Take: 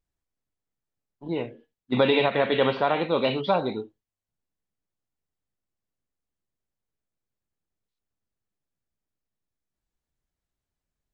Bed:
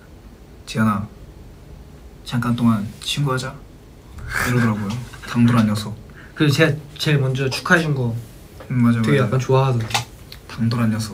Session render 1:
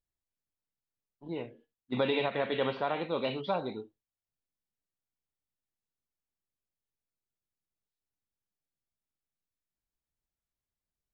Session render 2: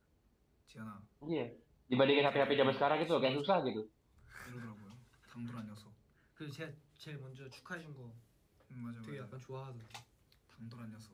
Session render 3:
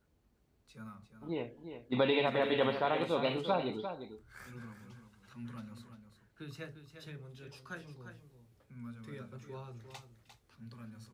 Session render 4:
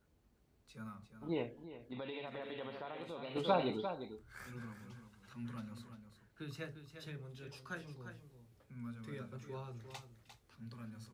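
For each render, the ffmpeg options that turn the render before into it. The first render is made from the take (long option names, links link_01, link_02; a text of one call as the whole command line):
ffmpeg -i in.wav -af "volume=-8.5dB" out.wav
ffmpeg -i in.wav -i bed.wav -filter_complex "[1:a]volume=-31dB[link_01];[0:a][link_01]amix=inputs=2:normalize=0" out.wav
ffmpeg -i in.wav -af "aecho=1:1:350:0.335" out.wav
ffmpeg -i in.wav -filter_complex "[0:a]asplit=3[link_01][link_02][link_03];[link_01]afade=type=out:start_time=1.54:duration=0.02[link_04];[link_02]acompressor=threshold=-47dB:ratio=3:attack=3.2:release=140:knee=1:detection=peak,afade=type=in:start_time=1.54:duration=0.02,afade=type=out:start_time=3.35:duration=0.02[link_05];[link_03]afade=type=in:start_time=3.35:duration=0.02[link_06];[link_04][link_05][link_06]amix=inputs=3:normalize=0" out.wav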